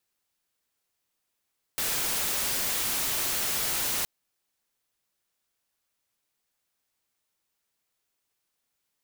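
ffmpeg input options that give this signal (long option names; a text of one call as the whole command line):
ffmpeg -f lavfi -i "anoisesrc=color=white:amplitude=0.0651:duration=2.27:sample_rate=44100:seed=1" out.wav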